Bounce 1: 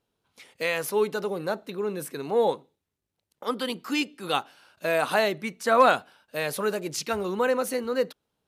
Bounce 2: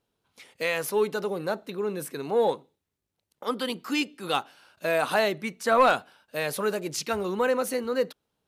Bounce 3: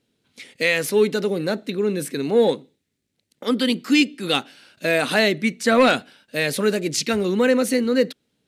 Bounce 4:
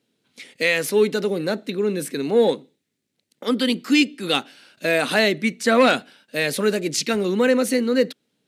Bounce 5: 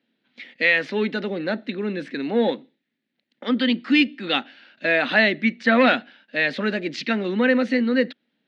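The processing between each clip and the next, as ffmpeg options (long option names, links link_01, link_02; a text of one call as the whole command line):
ffmpeg -i in.wav -af "asoftclip=type=tanh:threshold=-10dB" out.wav
ffmpeg -i in.wav -af "equalizer=frequency=125:width_type=o:width=1:gain=6,equalizer=frequency=250:width_type=o:width=1:gain=12,equalizer=frequency=500:width_type=o:width=1:gain=4,equalizer=frequency=1000:width_type=o:width=1:gain=-6,equalizer=frequency=2000:width_type=o:width=1:gain=9,equalizer=frequency=4000:width_type=o:width=1:gain=7,equalizer=frequency=8000:width_type=o:width=1:gain=7" out.wav
ffmpeg -i in.wav -af "highpass=140" out.wav
ffmpeg -i in.wav -af "highpass=220,equalizer=frequency=230:width_type=q:width=4:gain=5,equalizer=frequency=430:width_type=q:width=4:gain=-8,equalizer=frequency=1100:width_type=q:width=4:gain=-4,equalizer=frequency=1800:width_type=q:width=4:gain=6,lowpass=frequency=3800:width=0.5412,lowpass=frequency=3800:width=1.3066" out.wav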